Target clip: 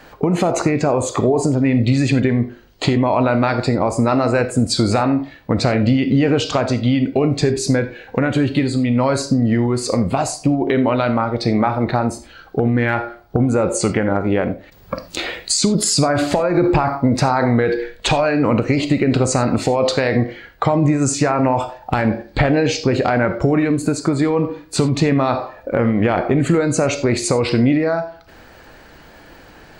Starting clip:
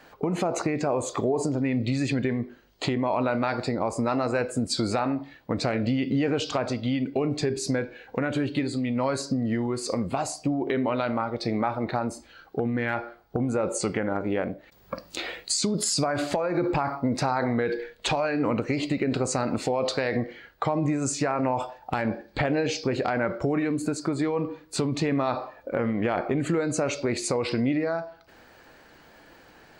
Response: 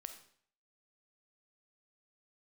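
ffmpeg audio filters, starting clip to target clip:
-filter_complex "[0:a]asplit=2[link_01][link_02];[1:a]atrim=start_sample=2205,atrim=end_sample=4410,lowshelf=frequency=140:gain=12[link_03];[link_02][link_03]afir=irnorm=-1:irlink=0,volume=9dB[link_04];[link_01][link_04]amix=inputs=2:normalize=0"

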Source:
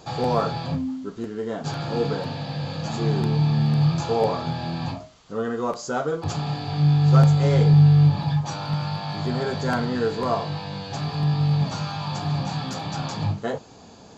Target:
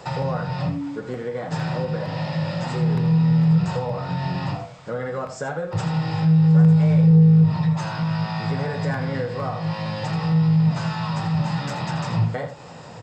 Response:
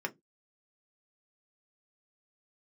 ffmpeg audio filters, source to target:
-filter_complex "[0:a]equalizer=frequency=125:width_type=o:width=1:gain=8,equalizer=frequency=250:width_type=o:width=1:gain=-4,equalizer=frequency=500:width_type=o:width=1:gain=8,equalizer=frequency=1000:width_type=o:width=1:gain=3,equalizer=frequency=2000:width_type=o:width=1:gain=10,acrossover=split=150[link_01][link_02];[link_02]acompressor=threshold=-27dB:ratio=5[link_03];[link_01][link_03]amix=inputs=2:normalize=0,asoftclip=type=tanh:threshold=-10.5dB,asplit=2[link_04][link_05];[link_05]aecho=0:1:88|877:0.299|0.112[link_06];[link_04][link_06]amix=inputs=2:normalize=0,asetrate=48000,aresample=44100"

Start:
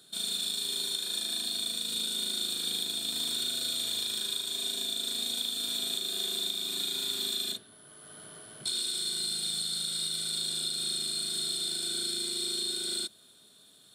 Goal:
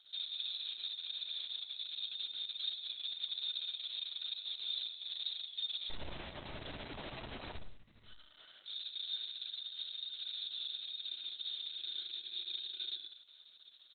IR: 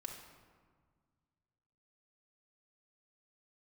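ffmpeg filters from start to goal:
-filter_complex "[0:a]alimiter=level_in=5.5dB:limit=-24dB:level=0:latency=1:release=119,volume=-5.5dB,acompressor=mode=upward:threshold=-54dB:ratio=2.5,bandpass=frequency=6100:width_type=q:width=1.7:csg=0,asplit=3[link_01][link_02][link_03];[link_01]afade=type=out:start_time=5.89:duration=0.02[link_04];[link_02]aeval=exprs='abs(val(0))':channel_layout=same,afade=type=in:start_time=5.89:duration=0.02,afade=type=out:start_time=8.04:duration=0.02[link_05];[link_03]afade=type=in:start_time=8.04:duration=0.02[link_06];[link_04][link_05][link_06]amix=inputs=3:normalize=0,asplit=2[link_07][link_08];[link_08]adelay=14,volume=-12.5dB[link_09];[link_07][link_09]amix=inputs=2:normalize=0,aecho=1:1:82|164|246:0.224|0.0761|0.0259[link_10];[1:a]atrim=start_sample=2205,atrim=end_sample=4410[link_11];[link_10][link_11]afir=irnorm=-1:irlink=0,volume=11.5dB" -ar 48000 -c:a libopus -b:a 6k

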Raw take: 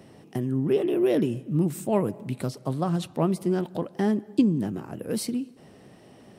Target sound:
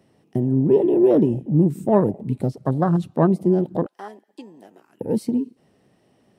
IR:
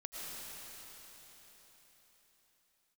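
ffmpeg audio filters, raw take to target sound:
-filter_complex "[0:a]afwtdn=0.0282,asettb=1/sr,asplit=3[link_01][link_02][link_03];[link_01]atrim=end=3.864[link_04];[link_02]atrim=start=3.86:end=5.01,asetpts=PTS-STARTPTS,afade=type=in:duration=0.004:curve=qsin,afade=type=out:start_time=1.146:duration=0.004:curve=qsin,highpass=1300[link_05];[link_03]atrim=start=5.006[link_06];[link_04][link_05]acrossfade=duration=0.004:curve1=hsin:curve2=qsin[link_07];[link_07][link_06]acrossfade=duration=0.004:curve1=qsin:curve2=hsin,volume=7dB"

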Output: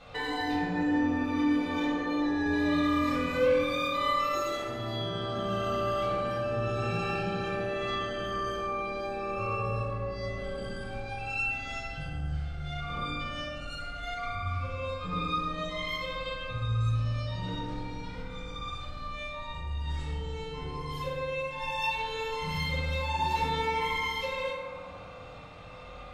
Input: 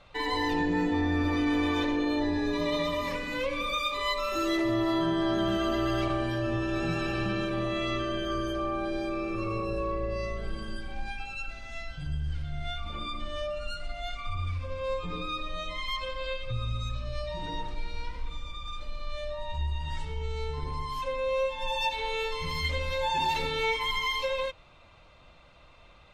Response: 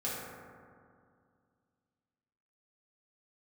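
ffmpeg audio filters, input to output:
-filter_complex "[0:a]acompressor=threshold=-41dB:ratio=2.5[link_01];[1:a]atrim=start_sample=2205[link_02];[link_01][link_02]afir=irnorm=-1:irlink=0,volume=5.5dB"

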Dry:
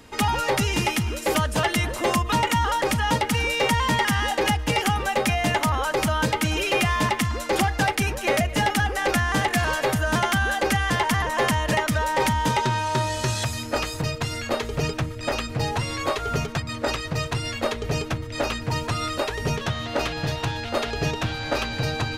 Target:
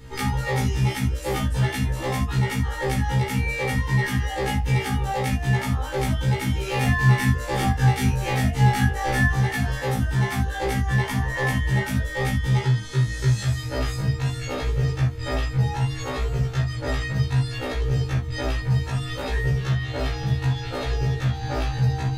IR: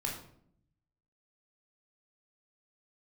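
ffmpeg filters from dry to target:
-filter_complex "[0:a]equalizer=frequency=76:width=0.77:gain=11,acompressor=threshold=-23dB:ratio=6,asettb=1/sr,asplit=3[link_01][link_02][link_03];[link_01]atrim=end=6.674[link_04];[link_02]atrim=start=6.67:end=9.28,asetpts=PTS-STARTPTS,afade=type=in:duration=0.004:curve=qsin,afade=type=out:start_time=2.606:duration=0.004:curve=qsin,asplit=2[link_05][link_06];[link_06]adelay=24,volume=-2dB[link_07];[link_05][link_07]amix=inputs=2:normalize=0,atrim=end_sample=115101[link_08];[link_03]atrim=start=9.276[link_09];[link_04][link_08]acrossfade=duration=0.004:curve1=hsin:curve2=qsin[link_10];[link_10][link_09]acrossfade=duration=0.004:curve1=qsin:curve2=hsin[link_11];[1:a]atrim=start_sample=2205,atrim=end_sample=3969[link_12];[link_11][link_12]afir=irnorm=-1:irlink=0,afftfilt=real='re*1.73*eq(mod(b,3),0)':imag='im*1.73*eq(mod(b,3),0)':win_size=2048:overlap=0.75"

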